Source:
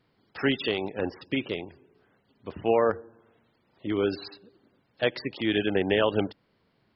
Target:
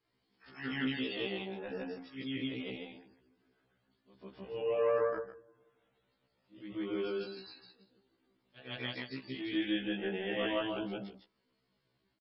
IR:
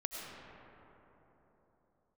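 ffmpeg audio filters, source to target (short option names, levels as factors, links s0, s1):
-filter_complex "[0:a]afftfilt=real='re':imag='-im':win_size=8192:overlap=0.75,aresample=22050,aresample=44100,equalizer=f=240:t=o:w=0.37:g=3.5,atempo=0.57,highshelf=f=3200:g=9,acrossover=split=4400[s0][s1];[s1]acompressor=threshold=0.00126:ratio=4:attack=1:release=60[s2];[s0][s2]amix=inputs=2:normalize=0,afftfilt=real='re*1.73*eq(mod(b,3),0)':imag='im*1.73*eq(mod(b,3),0)':win_size=2048:overlap=0.75,volume=0.631"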